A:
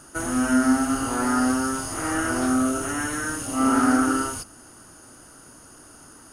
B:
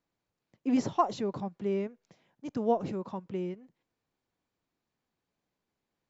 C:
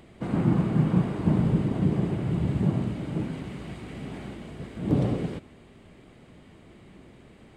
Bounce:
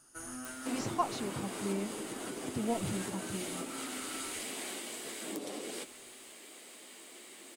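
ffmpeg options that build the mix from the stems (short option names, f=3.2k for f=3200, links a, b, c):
-filter_complex "[0:a]alimiter=limit=-16dB:level=0:latency=1,volume=-16dB[a];[1:a]asubboost=boost=11:cutoff=130,volume=-2.5dB[b];[2:a]highpass=f=290:w=0.5412,highpass=f=290:w=1.3066,equalizer=f=2.9k:w=0.62:g=-4,crystalizer=i=6:c=0,adelay=450,volume=1dB[c];[a][c]amix=inputs=2:normalize=0,acompressor=threshold=-34dB:ratio=12,volume=0dB[d];[b][d]amix=inputs=2:normalize=0,highshelf=f=2.2k:g=8.5,bandreject=f=60:t=h:w=6,bandreject=f=120:t=h:w=6,bandreject=f=180:t=h:w=6,flanger=delay=7.7:depth=2.4:regen=-53:speed=0.83:shape=triangular"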